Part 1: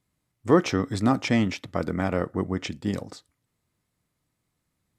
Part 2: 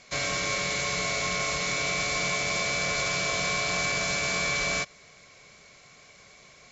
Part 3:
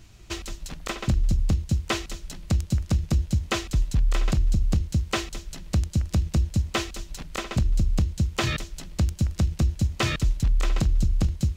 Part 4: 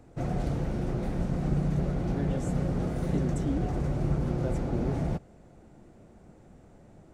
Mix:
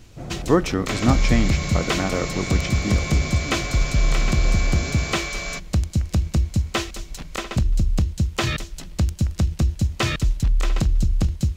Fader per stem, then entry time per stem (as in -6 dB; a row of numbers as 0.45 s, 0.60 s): +1.0 dB, -3.0 dB, +2.5 dB, -3.0 dB; 0.00 s, 0.75 s, 0.00 s, 0.00 s